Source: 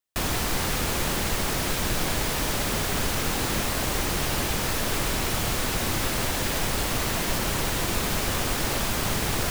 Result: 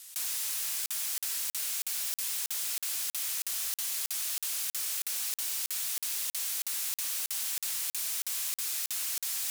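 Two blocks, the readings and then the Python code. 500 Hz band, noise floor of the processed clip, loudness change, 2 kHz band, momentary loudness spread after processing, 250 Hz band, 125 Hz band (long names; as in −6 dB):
−30.5 dB, below −85 dBFS, −5.0 dB, −14.5 dB, 1 LU, below −35 dB, below −40 dB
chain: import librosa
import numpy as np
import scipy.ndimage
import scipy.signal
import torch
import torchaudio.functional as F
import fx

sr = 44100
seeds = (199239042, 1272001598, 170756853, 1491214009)

p1 = fx.rattle_buzz(x, sr, strikes_db=-29.0, level_db=-20.0)
p2 = scipy.signal.sosfilt(scipy.signal.butter(2, 12000.0, 'lowpass', fs=sr, output='sos'), p1)
p3 = fx.low_shelf(p2, sr, hz=420.0, db=-11.5)
p4 = fx.rev_spring(p3, sr, rt60_s=1.7, pass_ms=(35, 58), chirp_ms=50, drr_db=1.0)
p5 = 10.0 ** (-29.0 / 20.0) * (np.abs((p4 / 10.0 ** (-29.0 / 20.0) + 3.0) % 4.0 - 2.0) - 1.0)
p6 = librosa.effects.preemphasis(p5, coef=0.97, zi=[0.0])
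p7 = p6 + fx.echo_single(p6, sr, ms=94, db=-6.0, dry=0)
p8 = fx.buffer_crackle(p7, sr, first_s=0.86, period_s=0.32, block=2048, kind='zero')
y = fx.env_flatten(p8, sr, amount_pct=100)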